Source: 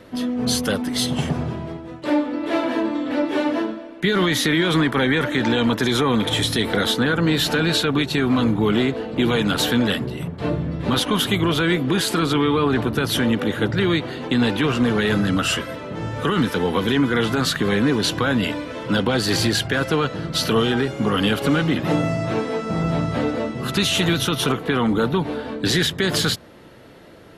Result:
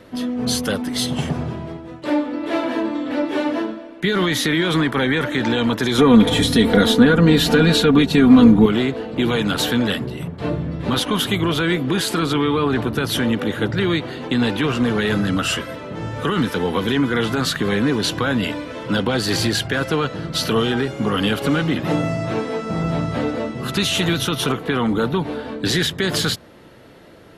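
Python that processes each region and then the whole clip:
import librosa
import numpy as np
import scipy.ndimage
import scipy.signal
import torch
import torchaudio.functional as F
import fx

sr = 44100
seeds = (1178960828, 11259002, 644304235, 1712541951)

y = fx.chain(x, sr, fx.low_shelf(hz=450.0, db=8.5),
    fx.comb(ms=4.2, depth=0.58), at=(5.98, 8.66))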